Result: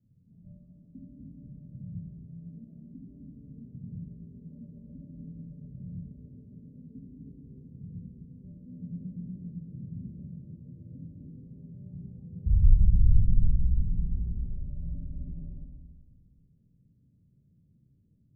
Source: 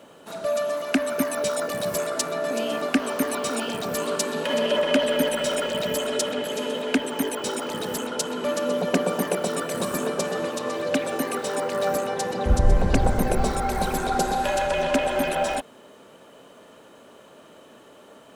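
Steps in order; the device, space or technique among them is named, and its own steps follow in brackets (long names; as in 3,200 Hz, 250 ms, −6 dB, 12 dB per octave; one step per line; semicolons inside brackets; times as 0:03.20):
club heard from the street (brickwall limiter −14.5 dBFS, peak gain reduction 8 dB; low-pass filter 130 Hz 24 dB per octave; convolution reverb RT60 1.5 s, pre-delay 21 ms, DRR −4 dB)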